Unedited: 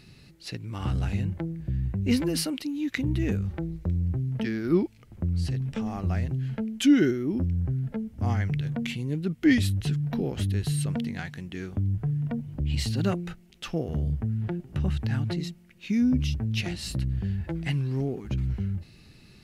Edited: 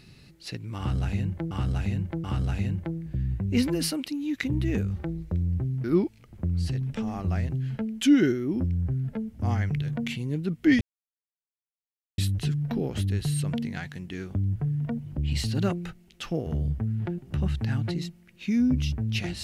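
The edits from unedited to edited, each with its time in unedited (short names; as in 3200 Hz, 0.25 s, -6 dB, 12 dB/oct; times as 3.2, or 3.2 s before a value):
0.78–1.51 loop, 3 plays
4.38–4.63 cut
9.6 insert silence 1.37 s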